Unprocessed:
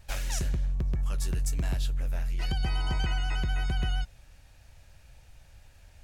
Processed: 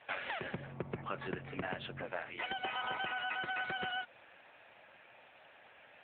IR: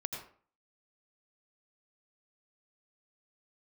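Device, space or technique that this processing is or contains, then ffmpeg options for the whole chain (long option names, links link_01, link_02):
voicemail: -filter_complex "[0:a]lowpass=5200,asplit=3[link_01][link_02][link_03];[link_01]afade=type=out:start_time=0.53:duration=0.02[link_04];[link_02]bass=frequency=250:gain=7,treble=frequency=4000:gain=-9,afade=type=in:start_time=0.53:duration=0.02,afade=type=out:start_time=2.04:duration=0.02[link_05];[link_03]afade=type=in:start_time=2.04:duration=0.02[link_06];[link_04][link_05][link_06]amix=inputs=3:normalize=0,highpass=440,lowpass=3000,acompressor=threshold=-42dB:ratio=8,volume=9.5dB" -ar 8000 -c:a libopencore_amrnb -b:a 7950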